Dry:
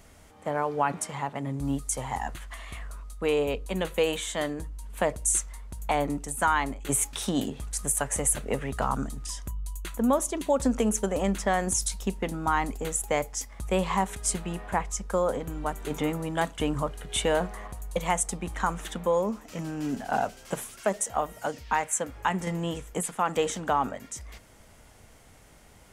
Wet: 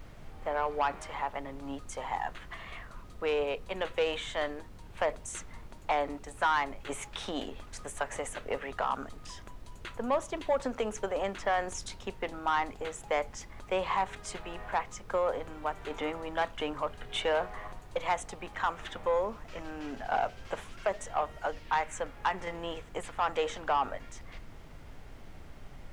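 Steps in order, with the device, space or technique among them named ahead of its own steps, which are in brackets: aircraft cabin announcement (BPF 490–3400 Hz; soft clip -19.5 dBFS, distortion -16 dB; brown noise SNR 11 dB)

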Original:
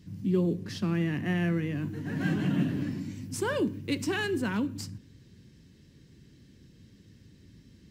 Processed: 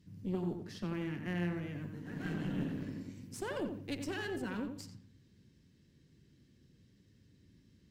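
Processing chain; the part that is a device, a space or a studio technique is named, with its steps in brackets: rockabilly slapback (tube stage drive 22 dB, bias 0.75; tape echo 89 ms, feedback 30%, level -5 dB, low-pass 2400 Hz); gain -6 dB

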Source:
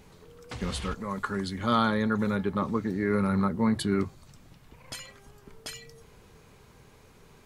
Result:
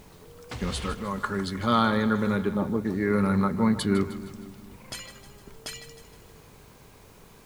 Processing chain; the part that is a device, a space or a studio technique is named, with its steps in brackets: spectral gain 2.56–2.85, 930–9200 Hz -10 dB; split-band echo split 320 Hz, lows 0.243 s, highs 0.155 s, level -13 dB; video cassette with head-switching buzz (buzz 50 Hz, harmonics 23, -61 dBFS -3 dB/oct; white noise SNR 33 dB); gain +2 dB

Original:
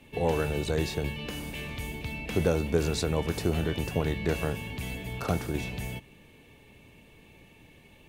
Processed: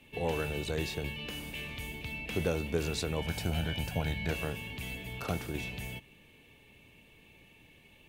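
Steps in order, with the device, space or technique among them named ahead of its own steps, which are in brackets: presence and air boost (bell 2800 Hz +6 dB 0.99 oct; high shelf 12000 Hz +6.5 dB); 3.21–4.31 comb 1.3 ms, depth 60%; gain -6 dB

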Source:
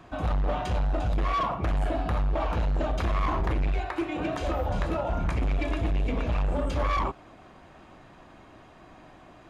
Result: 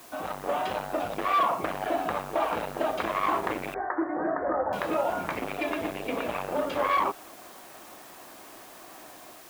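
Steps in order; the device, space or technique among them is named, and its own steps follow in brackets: dictaphone (BPF 340–3700 Hz; AGC gain up to 4 dB; wow and flutter; white noise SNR 21 dB); 3.74–4.73 steep low-pass 1900 Hz 96 dB/oct

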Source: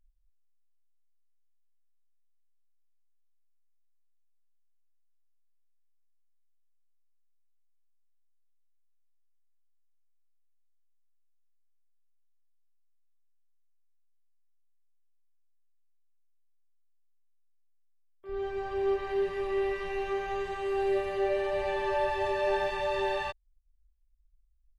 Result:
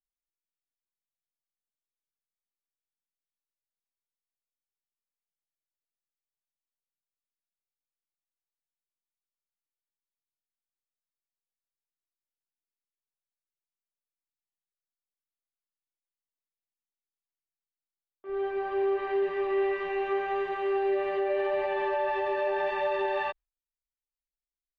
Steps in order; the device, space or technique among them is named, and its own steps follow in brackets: gate with hold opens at -53 dBFS; DJ mixer with the lows and highs turned down (three-band isolator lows -18 dB, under 220 Hz, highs -22 dB, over 3300 Hz; limiter -25 dBFS, peak gain reduction 6 dB); gain +4 dB

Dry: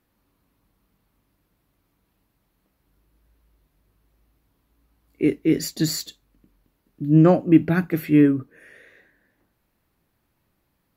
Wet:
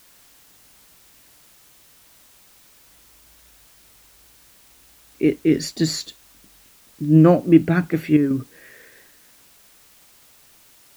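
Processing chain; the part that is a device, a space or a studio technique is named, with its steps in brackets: worn cassette (LPF 8200 Hz; wow and flutter; level dips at 8.17, 0.134 s -7 dB; white noise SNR 29 dB); gain +2 dB

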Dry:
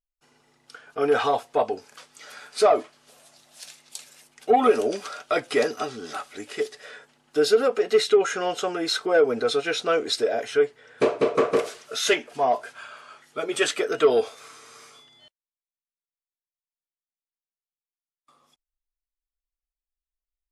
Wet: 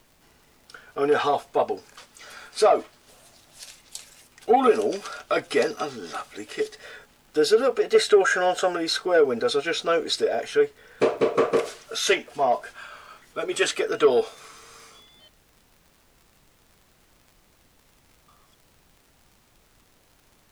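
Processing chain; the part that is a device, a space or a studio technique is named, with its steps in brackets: vinyl LP (wow and flutter 20 cents; crackle; pink noise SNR 34 dB); 7.95–8.77 thirty-one-band EQ 630 Hz +12 dB, 1600 Hz +11 dB, 8000 Hz +5 dB

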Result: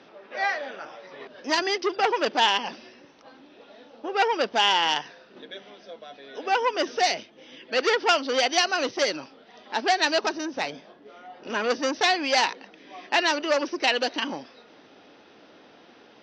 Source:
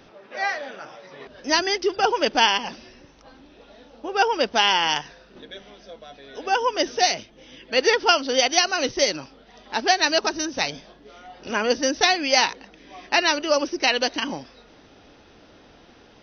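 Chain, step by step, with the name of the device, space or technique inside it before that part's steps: public-address speaker with an overloaded transformer (core saturation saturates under 3100 Hz; BPF 220–5000 Hz); 10.38–11.5 bell 4700 Hz -6 dB 2 oct

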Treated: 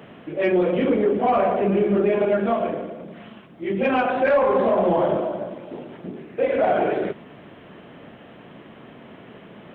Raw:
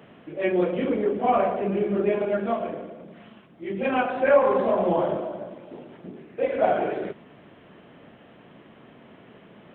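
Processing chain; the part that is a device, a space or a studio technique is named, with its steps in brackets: soft clipper into limiter (soft clip -11.5 dBFS, distortion -21 dB; limiter -18 dBFS, peak gain reduction 6 dB); gain +6 dB

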